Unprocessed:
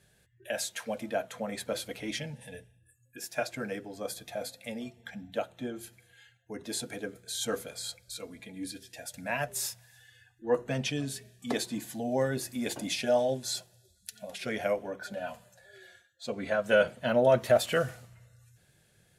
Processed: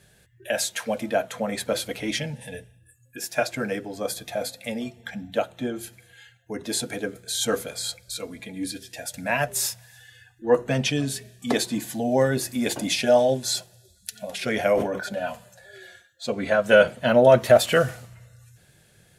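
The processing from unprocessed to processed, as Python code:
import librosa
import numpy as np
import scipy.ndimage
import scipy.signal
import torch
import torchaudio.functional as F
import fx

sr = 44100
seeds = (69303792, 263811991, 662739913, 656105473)

y = fx.sustainer(x, sr, db_per_s=71.0, at=(14.35, 15.09))
y = y * librosa.db_to_amplitude(8.0)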